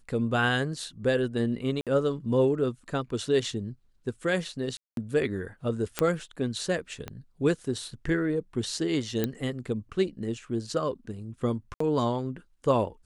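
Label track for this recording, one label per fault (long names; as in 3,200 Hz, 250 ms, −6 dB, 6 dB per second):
1.810000	1.870000	drop-out 57 ms
4.770000	4.970000	drop-out 202 ms
5.990000	5.990000	click −9 dBFS
7.080000	7.080000	click −20 dBFS
9.240000	9.240000	click −13 dBFS
11.740000	11.800000	drop-out 64 ms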